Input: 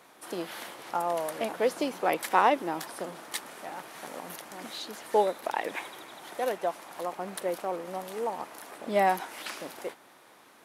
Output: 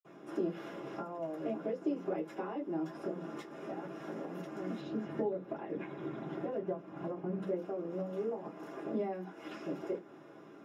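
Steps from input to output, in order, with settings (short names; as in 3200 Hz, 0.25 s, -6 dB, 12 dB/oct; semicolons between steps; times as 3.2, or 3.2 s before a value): 4.75–7.4 tone controls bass +10 dB, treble -9 dB; compressor 4:1, threshold -41 dBFS, peak gain reduction 20 dB; reverb, pre-delay 46 ms, DRR -60 dB; gain +8.5 dB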